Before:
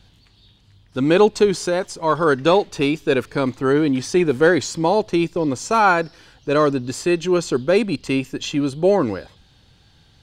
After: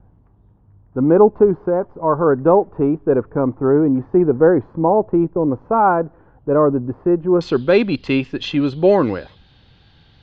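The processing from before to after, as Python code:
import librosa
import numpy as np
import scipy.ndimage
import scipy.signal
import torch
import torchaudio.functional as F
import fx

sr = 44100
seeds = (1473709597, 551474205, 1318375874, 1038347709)

y = fx.lowpass(x, sr, hz=fx.steps((0.0, 1100.0), (7.41, 4100.0)), slope=24)
y = F.gain(torch.from_numpy(y), 3.0).numpy()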